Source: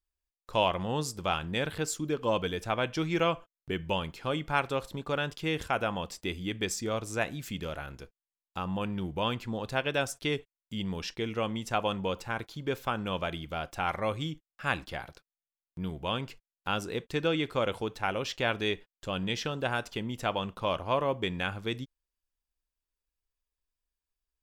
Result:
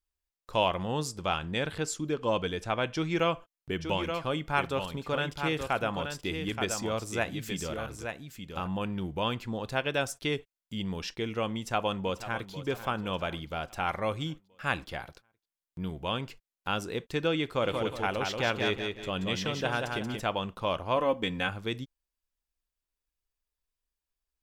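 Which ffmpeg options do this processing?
ffmpeg -i in.wav -filter_complex "[0:a]asettb=1/sr,asplit=3[link_01][link_02][link_03];[link_01]atrim=end=1.084[link_04];[link_02]atrim=start=1.08:end=3.19,asetpts=PTS-STARTPTS,afade=type=in:duration=0.004:curve=qsin,afade=type=out:start_time=2.106:duration=0.004:curve=qsin,lowpass=10000[link_05];[link_03]atrim=start=3.186[link_06];[link_04][link_05]acrossfade=duration=0.004:curve1=hsin:curve2=qsin[link_07];[link_07][link_06]acrossfade=duration=0.004:curve1=qsin:curve2=hsin,asplit=3[link_08][link_09][link_10];[link_08]afade=type=out:start_time=3.78:duration=0.02[link_11];[link_09]aecho=1:1:876:0.473,afade=type=in:start_time=3.78:duration=0.02,afade=type=out:start_time=8.66:duration=0.02[link_12];[link_10]afade=type=in:start_time=8.66:duration=0.02[link_13];[link_11][link_12][link_13]amix=inputs=3:normalize=0,asplit=2[link_14][link_15];[link_15]afade=type=in:start_time=11.57:duration=0.01,afade=type=out:start_time=12.51:duration=0.01,aecho=0:1:490|980|1470|1960|2450|2940:0.211349|0.116242|0.063933|0.0351632|0.0193397|0.0106369[link_16];[link_14][link_16]amix=inputs=2:normalize=0,asplit=3[link_17][link_18][link_19];[link_17]afade=type=out:start_time=17.62:duration=0.02[link_20];[link_18]aecho=1:1:181|362|543|724:0.596|0.208|0.073|0.0255,afade=type=in:start_time=17.62:duration=0.02,afade=type=out:start_time=20.19:duration=0.02[link_21];[link_19]afade=type=in:start_time=20.19:duration=0.02[link_22];[link_20][link_21][link_22]amix=inputs=3:normalize=0,asettb=1/sr,asplit=3[link_23][link_24][link_25];[link_23]atrim=end=20.964[link_26];[link_24]atrim=start=20.96:end=21.49,asetpts=PTS-STARTPTS,afade=type=in:duration=0.004:curve=qsin,afade=type=out:start_time=0.526:duration=0.004:curve=qsin,aecho=1:1:3.9:0.65,atrim=end_sample=23373[link_27];[link_25]atrim=start=21.486[link_28];[link_26][link_27]acrossfade=duration=0.004:curve1=hsin:curve2=qsin[link_29];[link_29][link_28]acrossfade=duration=0.004:curve1=qsin:curve2=hsin" out.wav

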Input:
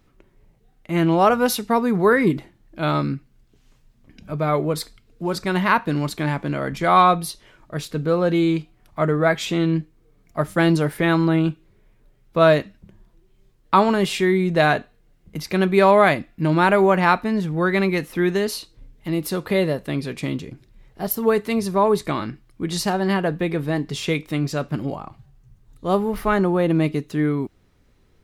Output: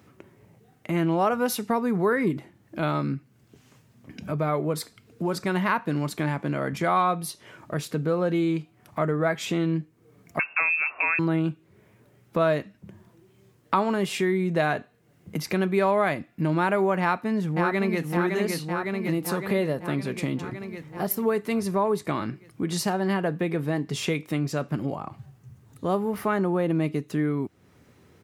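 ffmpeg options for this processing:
ffmpeg -i in.wav -filter_complex "[0:a]asettb=1/sr,asplit=3[link_01][link_02][link_03];[link_01]atrim=end=10.394[link_04];[link_02]atrim=start=10.39:end=11.19,asetpts=PTS-STARTPTS,afade=type=in:duration=0.004:curve=qsin,afade=type=out:start_time=0.796:duration=0.004:curve=qsin,lowpass=frequency=2400:width_type=q:width=0.5098,lowpass=frequency=2400:width_type=q:width=0.6013,lowpass=frequency=2400:width_type=q:width=0.9,lowpass=frequency=2400:width_type=q:width=2.563,afreqshift=-2800[link_05];[link_03]atrim=start=11.186[link_06];[link_04][link_05]acrossfade=duration=0.004:curve1=hsin:curve2=qsin[link_07];[link_07][link_06]acrossfade=duration=0.004:curve1=qsin:curve2=hsin,asplit=2[link_08][link_09];[link_09]afade=type=in:start_time=17:duration=0.01,afade=type=out:start_time=18.03:duration=0.01,aecho=0:1:560|1120|1680|2240|2800|3360|3920|4480|5040:0.595662|0.357397|0.214438|0.128663|0.0771978|0.0463187|0.0277912|0.0166747|0.0100048[link_10];[link_08][link_10]amix=inputs=2:normalize=0,highpass=frequency=90:width=0.5412,highpass=frequency=90:width=1.3066,equalizer=frequency=3900:width_type=o:width=0.8:gain=-4.5,acompressor=threshold=-39dB:ratio=2,volume=7dB" out.wav

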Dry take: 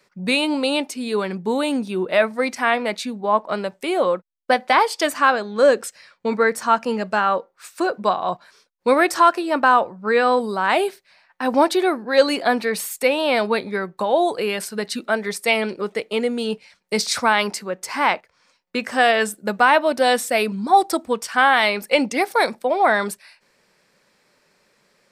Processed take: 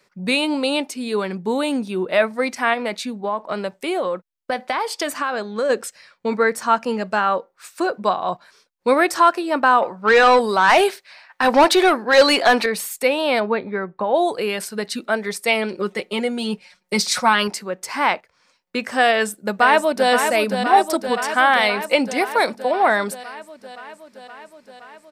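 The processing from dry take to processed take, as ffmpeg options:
ffmpeg -i in.wav -filter_complex "[0:a]asplit=3[link_01][link_02][link_03];[link_01]afade=type=out:start_time=2.73:duration=0.02[link_04];[link_02]acompressor=threshold=-18dB:ratio=6:attack=3.2:release=140:knee=1:detection=peak,afade=type=in:start_time=2.73:duration=0.02,afade=type=out:start_time=5.69:duration=0.02[link_05];[link_03]afade=type=in:start_time=5.69:duration=0.02[link_06];[link_04][link_05][link_06]amix=inputs=3:normalize=0,asettb=1/sr,asplit=3[link_07][link_08][link_09];[link_07]atrim=end=9.824[link_10];[link_08]atrim=start=9.82:end=12.66,asetpts=PTS-STARTPTS,afade=type=in:duration=0.004:curve=qsin,afade=type=out:start_time=2.836:duration=0.004:curve=qsin,asplit=2[link_11][link_12];[link_12]highpass=frequency=720:poles=1,volume=16dB,asoftclip=type=tanh:threshold=-4dB[link_13];[link_11][link_13]amix=inputs=2:normalize=0,lowpass=frequency=7500:poles=1,volume=-6dB[link_14];[link_09]atrim=start=12.656[link_15];[link_10][link_14]acrossfade=duration=0.004:curve1=hsin:curve2=qsin[link_16];[link_16][link_15]acrossfade=duration=0.004:curve1=qsin:curve2=hsin,asplit=3[link_17][link_18][link_19];[link_17]afade=type=out:start_time=13.39:duration=0.02[link_20];[link_18]lowpass=2100,afade=type=in:start_time=13.39:duration=0.02,afade=type=out:start_time=14.13:duration=0.02[link_21];[link_19]afade=type=in:start_time=14.13:duration=0.02[link_22];[link_20][link_21][link_22]amix=inputs=3:normalize=0,asettb=1/sr,asplit=3[link_23][link_24][link_25];[link_23]atrim=end=15.734[link_26];[link_24]atrim=start=15.73:end=17.48,asetpts=PTS-STARTPTS,afade=type=in:duration=0.004:curve=qsin,afade=type=out:start_time=1.746:duration=0.004:curve=qsin,aecho=1:1:5.5:0.71,atrim=end_sample=77175[link_27];[link_25]atrim=start=17.476[link_28];[link_26][link_27]acrossfade=duration=0.004:curve1=hsin:curve2=qsin[link_29];[link_29][link_28]acrossfade=duration=0.004:curve1=qsin:curve2=hsin,asplit=2[link_30][link_31];[link_31]afade=type=in:start_time=19.09:duration=0.01,afade=type=out:start_time=20.11:duration=0.01,aecho=0:1:520|1040|1560|2080|2600|3120|3640|4160|4680|5200|5720|6240:0.473151|0.354863|0.266148|0.199611|0.149708|0.112281|0.0842108|0.0631581|0.0473686|0.0355264|0.0266448|0.0199836[link_32];[link_30][link_32]amix=inputs=2:normalize=0" out.wav

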